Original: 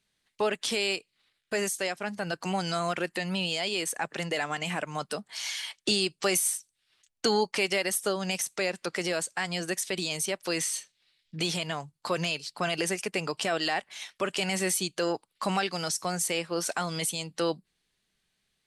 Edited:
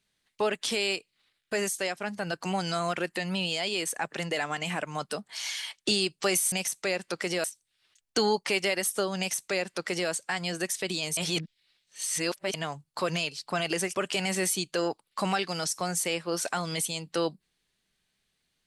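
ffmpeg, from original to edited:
ffmpeg -i in.wav -filter_complex "[0:a]asplit=6[link_01][link_02][link_03][link_04][link_05][link_06];[link_01]atrim=end=6.522[link_07];[link_02]atrim=start=8.258:end=9.182[link_08];[link_03]atrim=start=6.518:end=10.252[link_09];[link_04]atrim=start=10.248:end=11.622,asetpts=PTS-STARTPTS,areverse[link_10];[link_05]atrim=start=11.618:end=13.032[link_11];[link_06]atrim=start=14.188[link_12];[link_07][link_08]acrossfade=duration=0.004:curve1=hsin:curve2=hsin[link_13];[link_13][link_09]acrossfade=duration=0.004:curve1=hsin:curve2=hsin[link_14];[link_14][link_10]acrossfade=duration=0.004:curve1=hsin:curve2=hsin[link_15];[link_15][link_11]acrossfade=duration=0.004:curve1=hsin:curve2=hsin[link_16];[link_16][link_12]acrossfade=duration=0.004:curve1=hsin:curve2=hsin" out.wav

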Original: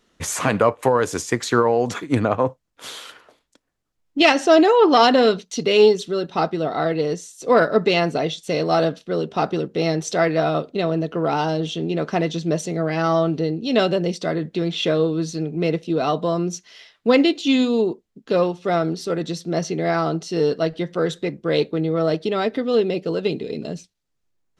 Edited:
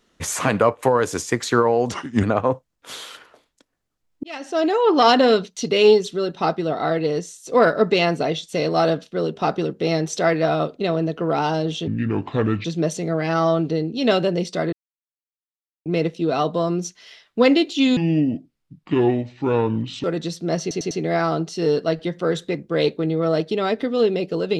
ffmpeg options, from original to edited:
ffmpeg -i in.wav -filter_complex "[0:a]asplit=13[link_01][link_02][link_03][link_04][link_05][link_06][link_07][link_08][link_09][link_10][link_11][link_12][link_13];[link_01]atrim=end=1.924[link_14];[link_02]atrim=start=1.92:end=2.18,asetpts=PTS-STARTPTS,asetrate=36603,aresample=44100,atrim=end_sample=13814,asetpts=PTS-STARTPTS[link_15];[link_03]atrim=start=2.176:end=4.18,asetpts=PTS-STARTPTS,afade=type=out:start_time=2:duration=0.004:curve=hsin[link_16];[link_04]atrim=start=4.18:end=11.824,asetpts=PTS-STARTPTS,afade=type=in:duration=0.86[link_17];[link_05]atrim=start=11.82:end=12.33,asetpts=PTS-STARTPTS,asetrate=29106,aresample=44100,atrim=end_sample=34077,asetpts=PTS-STARTPTS[link_18];[link_06]atrim=start=12.326:end=14.41,asetpts=PTS-STARTPTS,afade=type=out:start_time=2.08:duration=0.004:curve=hsin[link_19];[link_07]atrim=start=14.41:end=15.54,asetpts=PTS-STARTPTS,volume=0[link_20];[link_08]atrim=start=15.54:end=17.654,asetpts=PTS-STARTPTS,afade=type=in:duration=0.004:curve=hsin[link_21];[link_09]atrim=start=17.65:end=19.08,asetpts=PTS-STARTPTS,asetrate=30429,aresample=44100[link_22];[link_10]atrim=start=19.076:end=19.752[link_23];[link_11]atrim=start=19.648:end=19.752[link_24];[link_12]atrim=start=19.648:end=19.752[link_25];[link_13]atrim=start=19.648[link_26];[link_14][link_15]acrossfade=duration=0.004:curve1=hsin:curve2=hsin[link_27];[link_16][link_17]concat=n=2:v=0:a=1[link_28];[link_27][link_28]acrossfade=duration=0.004:curve1=hsin:curve2=hsin[link_29];[link_29][link_18]acrossfade=duration=0.004:curve1=hsin:curve2=hsin[link_30];[link_19][link_20][link_21]concat=n=3:v=0:a=1[link_31];[link_30][link_31]acrossfade=duration=0.004:curve1=hsin:curve2=hsin[link_32];[link_32][link_22]acrossfade=duration=0.004:curve1=hsin:curve2=hsin[link_33];[link_33][link_23]acrossfade=duration=0.004:curve1=hsin:curve2=hsin[link_34];[link_34][link_24]acrossfade=duration=0.004:curve1=hsin:curve2=hsin[link_35];[link_35][link_25]acrossfade=duration=0.004:curve1=hsin:curve2=hsin[link_36];[link_36][link_26]acrossfade=duration=0.004:curve1=hsin:curve2=hsin" out.wav

